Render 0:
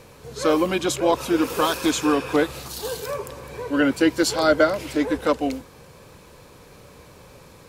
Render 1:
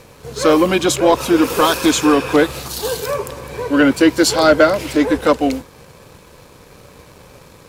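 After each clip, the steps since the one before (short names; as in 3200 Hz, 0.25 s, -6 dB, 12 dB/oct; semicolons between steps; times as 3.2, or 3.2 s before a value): sample leveller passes 1; gain +4 dB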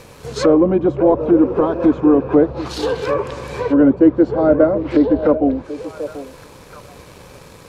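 treble ducked by the level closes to 580 Hz, closed at -13 dBFS; delay with a stepping band-pass 0.736 s, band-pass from 480 Hz, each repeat 1.4 oct, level -10 dB; gain +2 dB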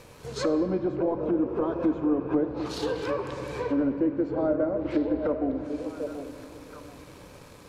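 compressor 2.5:1, threshold -17 dBFS, peak gain reduction 8 dB; on a send at -7.5 dB: reverb RT60 2.9 s, pre-delay 3 ms; on the sum: gain -8.5 dB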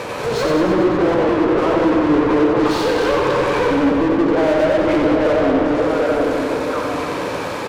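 overdrive pedal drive 35 dB, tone 1400 Hz, clips at -13.5 dBFS; on a send: reverse bouncing-ball echo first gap 90 ms, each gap 1.1×, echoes 5; on the sum: gain +2.5 dB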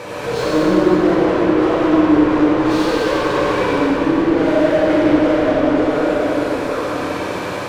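plate-style reverb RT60 2.3 s, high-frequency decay 1×, DRR -4.5 dB; gain -5.5 dB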